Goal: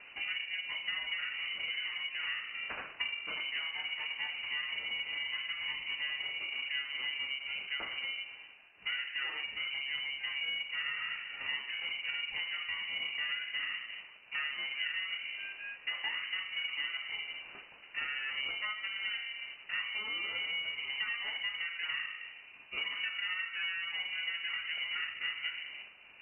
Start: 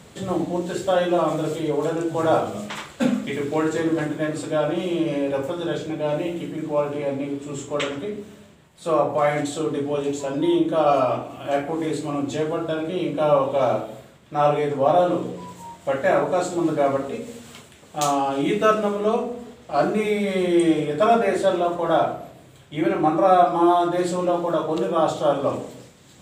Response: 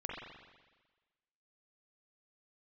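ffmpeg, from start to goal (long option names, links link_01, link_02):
-af "acrusher=bits=4:mode=log:mix=0:aa=0.000001,acompressor=threshold=-29dB:ratio=10,bandreject=frequency=163.4:width_type=h:width=4,bandreject=frequency=326.8:width_type=h:width=4,bandreject=frequency=490.2:width_type=h:width=4,bandreject=frequency=653.6:width_type=h:width=4,bandreject=frequency=817:width_type=h:width=4,bandreject=frequency=980.4:width_type=h:width=4,bandreject=frequency=1143.8:width_type=h:width=4,bandreject=frequency=1307.2:width_type=h:width=4,bandreject=frequency=1470.6:width_type=h:width=4,bandreject=frequency=1634:width_type=h:width=4,bandreject=frequency=1797.4:width_type=h:width=4,bandreject=frequency=1960.8:width_type=h:width=4,bandreject=frequency=2124.2:width_type=h:width=4,bandreject=frequency=2287.6:width_type=h:width=4,bandreject=frequency=2451:width_type=h:width=4,bandreject=frequency=2614.4:width_type=h:width=4,bandreject=frequency=2777.8:width_type=h:width=4,bandreject=frequency=2941.2:width_type=h:width=4,bandreject=frequency=3104.6:width_type=h:width=4,bandreject=frequency=3268:width_type=h:width=4,bandreject=frequency=3431.4:width_type=h:width=4,bandreject=frequency=3594.8:width_type=h:width=4,bandreject=frequency=3758.2:width_type=h:width=4,bandreject=frequency=3921.6:width_type=h:width=4,bandreject=frequency=4085:width_type=h:width=4,bandreject=frequency=4248.4:width_type=h:width=4,bandreject=frequency=4411.8:width_type=h:width=4,bandreject=frequency=4575.2:width_type=h:width=4,bandreject=frequency=4738.6:width_type=h:width=4,bandreject=frequency=4902:width_type=h:width=4,bandreject=frequency=5065.4:width_type=h:width=4,bandreject=frequency=5228.8:width_type=h:width=4,bandreject=frequency=5392.2:width_type=h:width=4,bandreject=frequency=5555.6:width_type=h:width=4,bandreject=frequency=5719:width_type=h:width=4,bandreject=frequency=5882.4:width_type=h:width=4,bandreject=frequency=6045.8:width_type=h:width=4,bandreject=frequency=6209.2:width_type=h:width=4,bandreject=frequency=6372.6:width_type=h:width=4,aeval=exprs='val(0)*sin(2*PI*430*n/s)':channel_layout=same,lowpass=frequency=2600:width_type=q:width=0.5098,lowpass=frequency=2600:width_type=q:width=0.6013,lowpass=frequency=2600:width_type=q:width=0.9,lowpass=frequency=2600:width_type=q:width=2.563,afreqshift=-3000,volume=-2dB"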